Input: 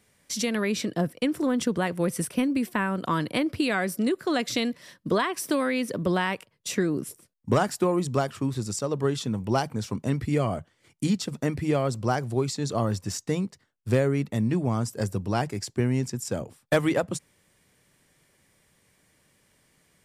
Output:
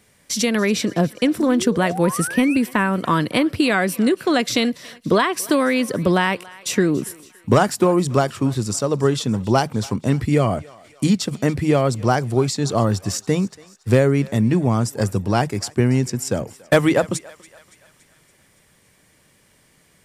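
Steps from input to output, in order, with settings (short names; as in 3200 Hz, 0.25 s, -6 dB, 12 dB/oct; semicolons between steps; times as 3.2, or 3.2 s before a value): painted sound rise, 1.38–2.57, 220–2800 Hz -37 dBFS; thinning echo 0.283 s, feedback 59%, high-pass 690 Hz, level -20 dB; gain +7.5 dB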